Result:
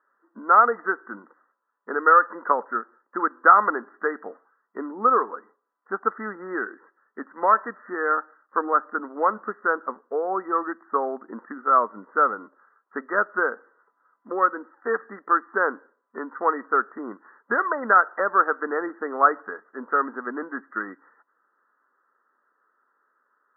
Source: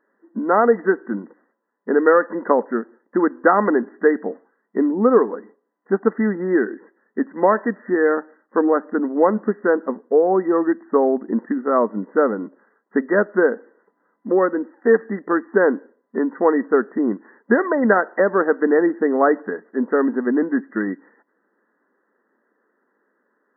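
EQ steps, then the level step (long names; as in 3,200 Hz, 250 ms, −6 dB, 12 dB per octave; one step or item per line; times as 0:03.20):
high-pass filter 900 Hz 6 dB per octave
low-pass with resonance 1,300 Hz, resonance Q 5.3
−5.5 dB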